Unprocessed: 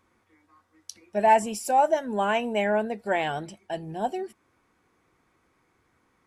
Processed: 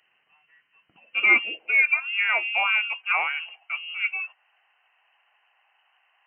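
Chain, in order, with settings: frequency inversion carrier 3 kHz; high-pass sweep 140 Hz -> 800 Hz, 0.83–2.12 s

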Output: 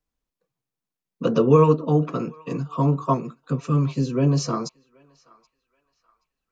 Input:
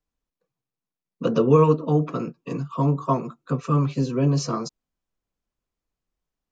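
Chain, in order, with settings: 3.14–4.15 s: peaking EQ 870 Hz -8 dB 1.4 oct; on a send: band-passed feedback delay 777 ms, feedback 42%, band-pass 1.9 kHz, level -23 dB; on the sum: trim +1 dB

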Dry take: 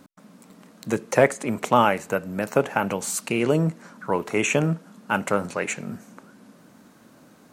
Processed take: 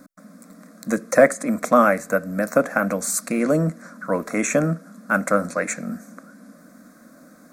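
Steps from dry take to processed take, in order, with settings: static phaser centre 590 Hz, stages 8; trim +5.5 dB

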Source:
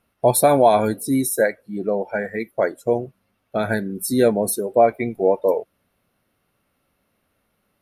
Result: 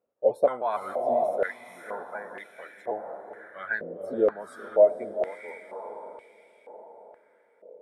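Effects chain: pitch shift switched off and on -2 st, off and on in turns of 153 ms; echo that smears into a reverb 486 ms, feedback 52%, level -7 dB; step-sequenced band-pass 2.1 Hz 510–2600 Hz

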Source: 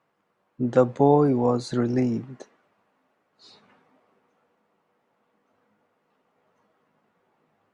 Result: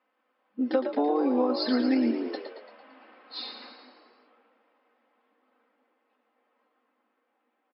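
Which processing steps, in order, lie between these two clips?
Doppler pass-by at 3.07 s, 10 m/s, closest 2.8 m; level-controlled noise filter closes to 2.7 kHz, open at -36 dBFS; in parallel at +0.5 dB: gain riding; on the sum: treble shelf 2.1 kHz +11 dB; band-stop 4 kHz, Q 24; comb 3.9 ms, depth 98%; compression 6:1, threshold -28 dBFS, peak gain reduction 9.5 dB; frequency-shifting echo 113 ms, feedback 55%, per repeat +56 Hz, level -8 dB; FFT band-pass 210–5400 Hz; trim +6 dB

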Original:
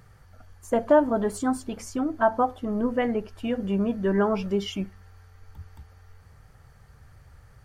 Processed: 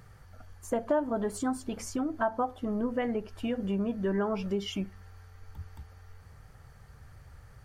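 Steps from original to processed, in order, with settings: compression 2:1, threshold -31 dBFS, peak gain reduction 10 dB

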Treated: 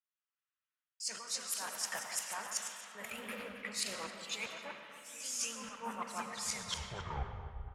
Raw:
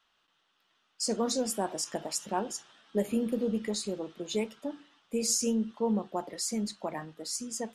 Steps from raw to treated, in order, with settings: tape stop on the ending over 1.27 s; high-pass 48 Hz; high-order bell 1.6 kHz +10 dB; level held to a coarse grid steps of 20 dB; amplifier tone stack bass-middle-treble 10-0-10; reverse; compression 12:1, threshold -51 dBFS, peak gain reduction 13.5 dB; reverse; delay 272 ms -12 dB; on a send at -2.5 dB: reverberation RT60 4.6 s, pre-delay 70 ms; on the sum: ever faster or slower copies 383 ms, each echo +2 st, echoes 2, each echo -6 dB; three bands expanded up and down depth 100%; trim +13 dB

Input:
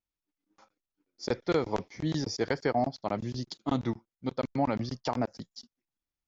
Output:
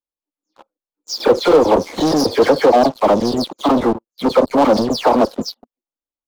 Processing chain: delay that grows with frequency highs early, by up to 167 ms; waveshaping leveller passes 5; ten-band graphic EQ 125 Hz -10 dB, 250 Hz +5 dB, 500 Hz +11 dB, 1 kHz +8 dB, 2 kHz -6 dB, 4 kHz +3 dB

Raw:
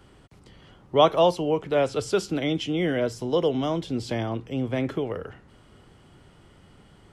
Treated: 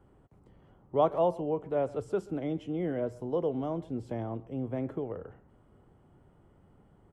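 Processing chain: FFT filter 850 Hz 0 dB, 4.7 kHz -21 dB, 8.2 kHz -12 dB; speakerphone echo 130 ms, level -20 dB; trim -7 dB

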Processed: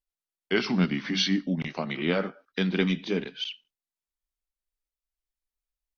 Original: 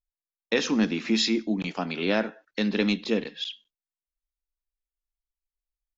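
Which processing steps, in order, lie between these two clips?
pitch bend over the whole clip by -3.5 st ending unshifted

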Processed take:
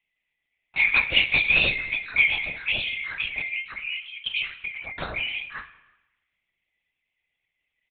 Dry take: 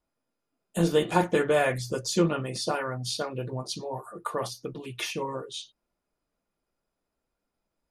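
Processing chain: split-band scrambler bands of 2 kHz; echo from a far wall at 56 m, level -29 dB; spring tank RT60 1 s, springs 48 ms, chirp 40 ms, DRR 12 dB; LPC vocoder at 8 kHz whisper; trim +2.5 dB

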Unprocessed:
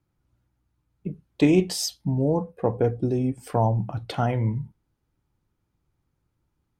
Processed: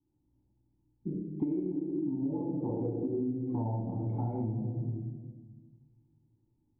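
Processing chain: cascade formant filter u; bass shelf 200 Hz -3.5 dB; reverberation RT60 1.3 s, pre-delay 19 ms, DRR -4 dB; compression 16:1, threshold -31 dBFS, peak gain reduction 18.5 dB; trim +2 dB

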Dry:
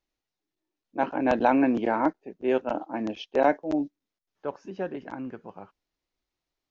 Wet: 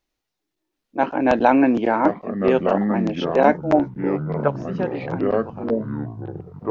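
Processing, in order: 3.71–4.48 s: high-order bell 1.1 kHz +11.5 dB 2.6 oct; ever faster or slower copies 729 ms, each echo -5 st, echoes 3, each echo -6 dB; trim +6 dB

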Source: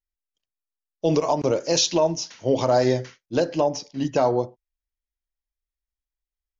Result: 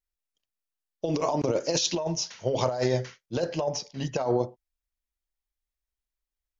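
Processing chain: 1.97–4.26 s: peaking EQ 290 Hz -14 dB 0.28 oct; compressor with a negative ratio -22 dBFS, ratio -0.5; trim -2.5 dB

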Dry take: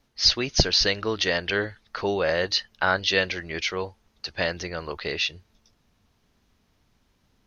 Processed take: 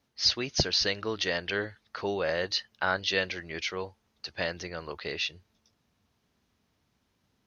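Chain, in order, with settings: high-pass 72 Hz; trim -5.5 dB

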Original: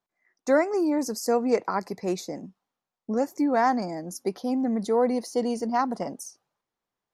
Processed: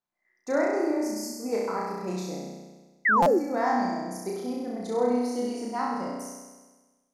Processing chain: spectral selection erased 1.00–1.40 s, 250–4200 Hz; on a send: flutter echo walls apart 5.6 m, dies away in 1.3 s; on the sum: painted sound fall, 3.05–3.39 s, 310–2100 Hz -13 dBFS; buffer glitch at 3.22 s, samples 256, times 6; trim -7.5 dB

